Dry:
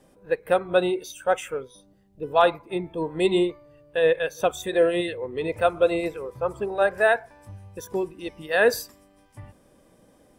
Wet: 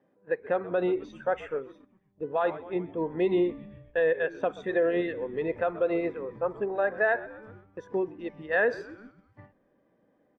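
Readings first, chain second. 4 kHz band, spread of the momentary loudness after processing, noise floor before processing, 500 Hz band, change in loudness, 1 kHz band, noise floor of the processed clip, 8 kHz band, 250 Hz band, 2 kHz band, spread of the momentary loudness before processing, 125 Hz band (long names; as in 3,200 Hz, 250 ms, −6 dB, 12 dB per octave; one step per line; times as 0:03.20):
below −15 dB, 14 LU, −59 dBFS, −4.5 dB, −4.5 dB, −7.5 dB, −69 dBFS, below −25 dB, −2.5 dB, −4.0 dB, 12 LU, −5.0 dB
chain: high-pass filter 180 Hz 12 dB per octave
head-to-tape spacing loss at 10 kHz 41 dB
echo with shifted repeats 128 ms, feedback 62%, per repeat −74 Hz, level −21 dB
brickwall limiter −17.5 dBFS, peak gain reduction 8 dB
parametric band 1,800 Hz +8 dB 0.42 octaves
noise gate −49 dBFS, range −8 dB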